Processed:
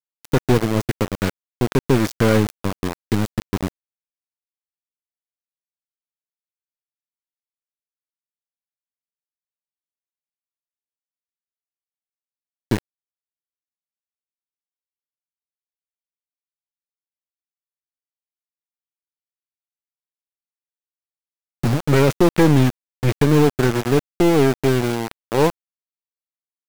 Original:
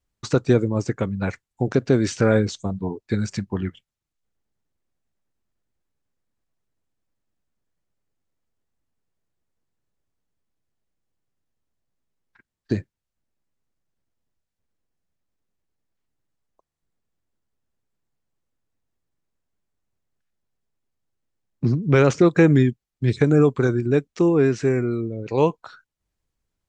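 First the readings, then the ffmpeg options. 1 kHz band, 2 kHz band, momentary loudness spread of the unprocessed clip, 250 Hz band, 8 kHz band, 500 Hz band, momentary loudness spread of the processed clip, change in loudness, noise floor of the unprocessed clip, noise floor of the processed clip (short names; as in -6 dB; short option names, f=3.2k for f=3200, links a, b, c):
+5.5 dB, +2.5 dB, 12 LU, +1.5 dB, +5.0 dB, +1.0 dB, 11 LU, +1.5 dB, -85 dBFS, under -85 dBFS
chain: -af "aeval=exprs='val(0)*gte(abs(val(0)),0.0794)':c=same,aeval=exprs='(tanh(5.62*val(0)+0.55)-tanh(0.55))/5.62':c=same,volume=6dB"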